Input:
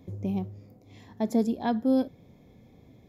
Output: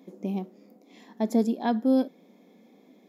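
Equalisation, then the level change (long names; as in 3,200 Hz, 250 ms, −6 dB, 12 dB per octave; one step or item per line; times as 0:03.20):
linear-phase brick-wall high-pass 180 Hz
+1.5 dB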